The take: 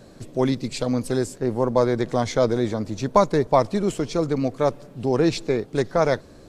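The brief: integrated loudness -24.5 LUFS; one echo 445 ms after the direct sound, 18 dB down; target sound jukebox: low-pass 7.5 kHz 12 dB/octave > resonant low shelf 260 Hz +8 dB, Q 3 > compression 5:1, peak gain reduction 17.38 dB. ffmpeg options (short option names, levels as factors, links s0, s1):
-af "lowpass=7500,lowshelf=f=260:t=q:w=3:g=8,aecho=1:1:445:0.126,acompressor=threshold=0.0447:ratio=5,volume=2"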